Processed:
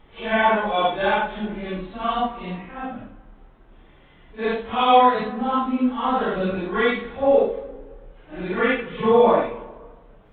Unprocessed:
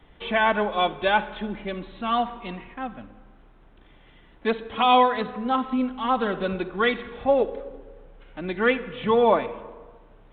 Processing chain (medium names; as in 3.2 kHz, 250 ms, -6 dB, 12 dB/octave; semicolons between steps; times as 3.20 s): phase randomisation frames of 200 ms; treble shelf 3.4 kHz -6.5 dB; trim +3 dB